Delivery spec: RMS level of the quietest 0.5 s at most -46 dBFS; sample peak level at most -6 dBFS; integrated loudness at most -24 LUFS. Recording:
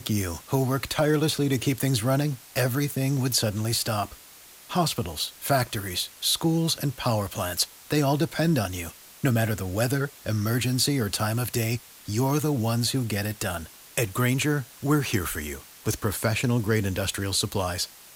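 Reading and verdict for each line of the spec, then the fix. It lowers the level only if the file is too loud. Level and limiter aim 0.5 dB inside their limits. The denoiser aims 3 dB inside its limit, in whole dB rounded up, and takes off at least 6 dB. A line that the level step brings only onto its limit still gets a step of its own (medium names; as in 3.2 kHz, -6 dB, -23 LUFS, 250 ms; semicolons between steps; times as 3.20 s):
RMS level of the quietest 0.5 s -49 dBFS: pass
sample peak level -10.5 dBFS: pass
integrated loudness -26.0 LUFS: pass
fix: none needed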